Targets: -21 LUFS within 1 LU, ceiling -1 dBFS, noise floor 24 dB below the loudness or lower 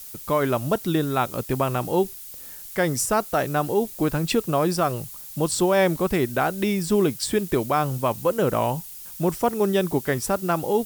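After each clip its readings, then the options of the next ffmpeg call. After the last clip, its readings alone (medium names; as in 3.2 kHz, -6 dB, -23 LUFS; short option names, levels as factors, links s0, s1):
noise floor -40 dBFS; noise floor target -48 dBFS; loudness -23.5 LUFS; peak level -10.0 dBFS; loudness target -21.0 LUFS
-> -af "afftdn=nr=8:nf=-40"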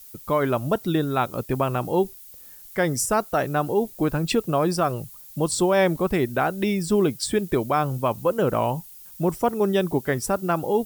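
noise floor -45 dBFS; noise floor target -48 dBFS
-> -af "afftdn=nr=6:nf=-45"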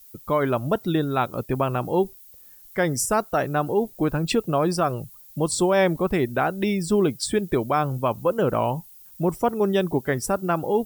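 noise floor -48 dBFS; loudness -23.5 LUFS; peak level -10.5 dBFS; loudness target -21.0 LUFS
-> -af "volume=1.33"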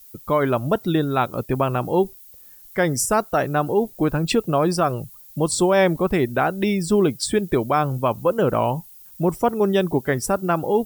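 loudness -21.0 LUFS; peak level -8.0 dBFS; noise floor -46 dBFS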